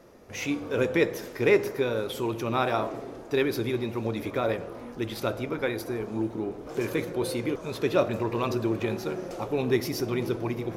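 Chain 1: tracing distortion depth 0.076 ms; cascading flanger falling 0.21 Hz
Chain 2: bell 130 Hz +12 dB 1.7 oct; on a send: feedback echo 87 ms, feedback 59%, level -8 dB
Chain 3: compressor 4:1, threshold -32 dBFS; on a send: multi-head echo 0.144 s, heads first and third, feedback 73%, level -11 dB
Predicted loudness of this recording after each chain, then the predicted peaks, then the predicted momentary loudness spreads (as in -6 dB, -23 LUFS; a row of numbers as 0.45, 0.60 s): -34.0, -23.5, -35.0 LUFS; -15.0, -6.5, -19.0 dBFS; 9, 8, 2 LU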